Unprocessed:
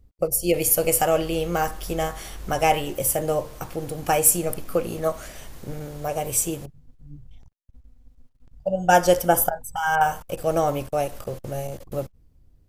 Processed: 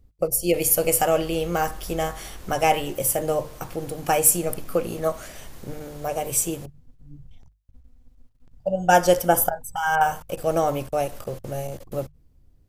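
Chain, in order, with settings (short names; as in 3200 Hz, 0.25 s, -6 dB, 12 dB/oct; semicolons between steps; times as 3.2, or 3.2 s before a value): notches 50/100/150 Hz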